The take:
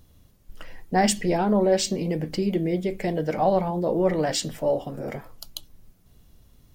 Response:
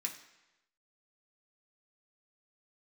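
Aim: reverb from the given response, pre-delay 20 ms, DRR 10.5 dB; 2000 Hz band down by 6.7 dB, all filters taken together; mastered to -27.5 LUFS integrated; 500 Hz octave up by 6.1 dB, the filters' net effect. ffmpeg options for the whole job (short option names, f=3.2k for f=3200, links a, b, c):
-filter_complex "[0:a]equalizer=f=500:t=o:g=8,equalizer=f=2k:t=o:g=-8.5,asplit=2[a][b];[1:a]atrim=start_sample=2205,adelay=20[c];[b][c]afir=irnorm=-1:irlink=0,volume=-10.5dB[d];[a][d]amix=inputs=2:normalize=0,volume=-7.5dB"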